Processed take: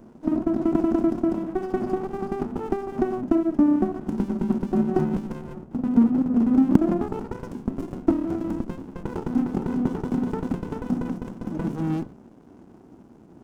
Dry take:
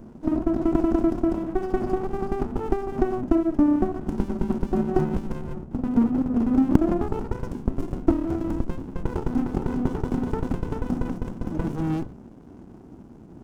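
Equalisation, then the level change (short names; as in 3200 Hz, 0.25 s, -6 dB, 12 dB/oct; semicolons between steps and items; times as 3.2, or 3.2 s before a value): dynamic EQ 200 Hz, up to +8 dB, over -36 dBFS, Q 1.4; low shelf 140 Hz -10.5 dB; -1.0 dB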